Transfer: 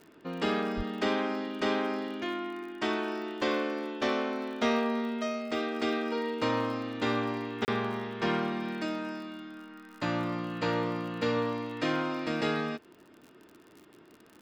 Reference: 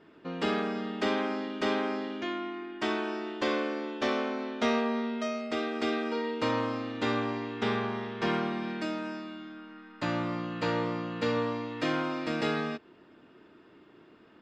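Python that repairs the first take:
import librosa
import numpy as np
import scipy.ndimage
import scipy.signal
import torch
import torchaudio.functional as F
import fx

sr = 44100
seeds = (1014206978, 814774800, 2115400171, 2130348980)

y = fx.fix_declick_ar(x, sr, threshold=6.5)
y = fx.highpass(y, sr, hz=140.0, slope=24, at=(0.76, 0.88), fade=0.02)
y = fx.fix_interpolate(y, sr, at_s=(7.65,), length_ms=29.0)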